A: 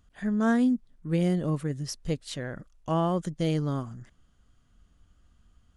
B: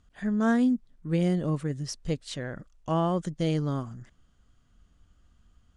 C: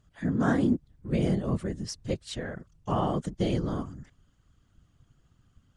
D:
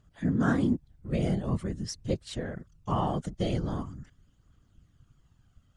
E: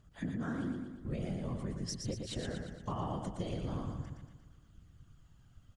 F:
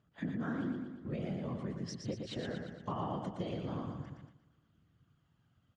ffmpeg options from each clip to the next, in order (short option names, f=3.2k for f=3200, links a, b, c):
-af "lowpass=f=9.5k:w=0.5412,lowpass=f=9.5k:w=1.3066"
-af "afftfilt=real='hypot(re,im)*cos(2*PI*random(0))':imag='hypot(re,im)*sin(2*PI*random(1))':win_size=512:overlap=0.75,volume=5dB"
-af "aphaser=in_gain=1:out_gain=1:delay=1.6:decay=0.32:speed=0.44:type=triangular,volume=-1.5dB"
-filter_complex "[0:a]acompressor=threshold=-35dB:ratio=10,asplit=2[a][b];[b]aecho=0:1:117|234|351|468|585|702|819:0.562|0.292|0.152|0.0791|0.0411|0.0214|0.0111[c];[a][c]amix=inputs=2:normalize=0"
-af "highpass=130,lowpass=3.9k,agate=range=-6dB:threshold=-55dB:ratio=16:detection=peak,volume=1dB"